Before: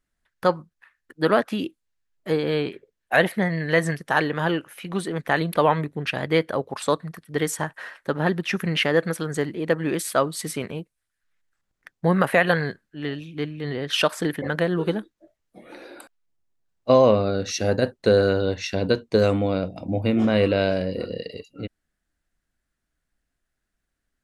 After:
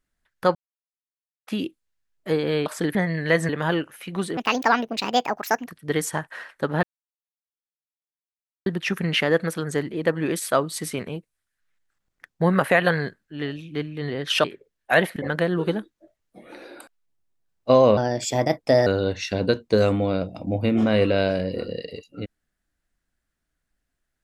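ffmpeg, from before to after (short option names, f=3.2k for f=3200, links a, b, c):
-filter_complex "[0:a]asplit=13[a][b][c][d][e][f][g][h][i][j][k][l][m];[a]atrim=end=0.55,asetpts=PTS-STARTPTS,afade=t=out:st=0.546:d=0.004:c=hsin[n];[b]atrim=start=0.55:end=1.47,asetpts=PTS-STARTPTS,volume=0[o];[c]atrim=start=1.47:end=2.662,asetpts=PTS-STARTPTS,afade=t=in:d=0.004:c=hsin[p];[d]atrim=start=14.068:end=14.362[q];[e]atrim=start=3.378:end=3.922[r];[f]atrim=start=4.258:end=5.144[s];[g]atrim=start=5.14:end=7.13,asetpts=PTS-STARTPTS,asetrate=67473,aresample=44100[t];[h]atrim=start=7.126:end=8.29,asetpts=PTS-STARTPTS,afade=t=out:st=1.16:d=0.004:c=hsin,apad=pad_dur=1.83[u];[i]atrim=start=8.29:end=14.072,asetpts=PTS-STARTPTS,afade=t=in:d=0.004:c=hsin[v];[j]atrim=start=2.658:end=3.382[w];[k]atrim=start=14.358:end=17.174[x];[l]atrim=start=17.17:end=18.28,asetpts=PTS-STARTPTS,asetrate=54684,aresample=44100[y];[m]atrim=start=18.276[z];[n][o][p]concat=n=3:v=0:a=1[aa];[aa][q]acrossfade=d=0.004:c1=hsin:c2=hsin[ab];[ab][r]acrossfade=d=0.004:c1=hsin:c2=hsin[ac];[ac][s]acrossfade=d=0.004:c1=hsin:c2=hsin[ad];[ad][t]acrossfade=d=0.004:c1=hsin:c2=hsin[ae];[u][v]concat=n=2:v=0:a=1[af];[ae][af]acrossfade=d=0.004:c1=hsin:c2=hsin[ag];[ag][w]acrossfade=d=0.004:c1=hsin:c2=hsin[ah];[ah][x]acrossfade=d=0.004:c1=hsin:c2=hsin[ai];[ai][y]acrossfade=d=0.004:c1=hsin:c2=hsin[aj];[aj][z]acrossfade=d=0.004:c1=hsin:c2=hsin"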